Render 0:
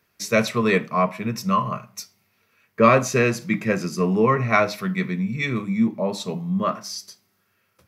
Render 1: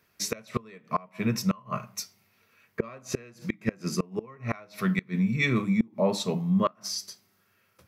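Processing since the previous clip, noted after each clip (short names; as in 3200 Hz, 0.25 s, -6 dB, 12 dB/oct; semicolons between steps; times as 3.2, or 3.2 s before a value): flipped gate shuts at -13 dBFS, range -29 dB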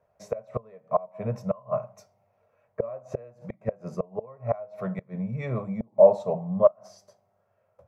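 EQ curve 120 Hz 0 dB, 320 Hz -14 dB, 600 Hz +14 dB, 1200 Hz -6 dB, 1700 Hz -13 dB, 4500 Hz -25 dB, 6700 Hz -20 dB, 12000 Hz -26 dB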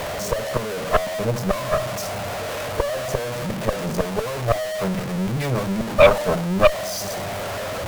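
zero-crossing step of -23 dBFS; added harmonics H 6 -10 dB, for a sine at -4 dBFS; gain +1 dB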